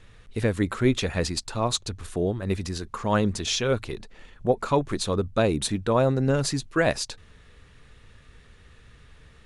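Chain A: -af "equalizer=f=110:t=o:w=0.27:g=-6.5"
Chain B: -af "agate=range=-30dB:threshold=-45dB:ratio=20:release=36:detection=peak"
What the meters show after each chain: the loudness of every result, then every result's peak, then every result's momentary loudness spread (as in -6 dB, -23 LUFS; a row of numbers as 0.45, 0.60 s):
-26.0, -26.0 LUFS; -8.0, -8.5 dBFS; 8, 9 LU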